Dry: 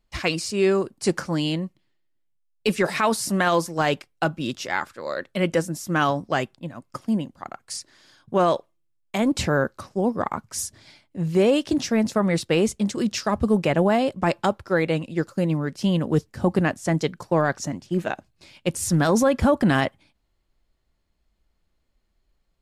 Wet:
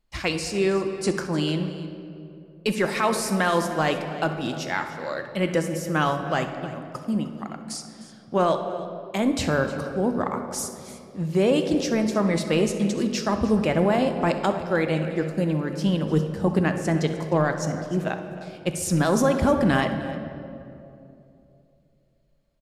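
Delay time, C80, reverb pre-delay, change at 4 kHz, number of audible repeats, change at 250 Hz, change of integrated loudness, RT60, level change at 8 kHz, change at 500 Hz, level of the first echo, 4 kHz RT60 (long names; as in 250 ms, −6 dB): 65 ms, 8.5 dB, 3 ms, −1.5 dB, 2, −0.5 dB, −1.0 dB, 2.8 s, −1.5 dB, −1.0 dB, −15.5 dB, 1.4 s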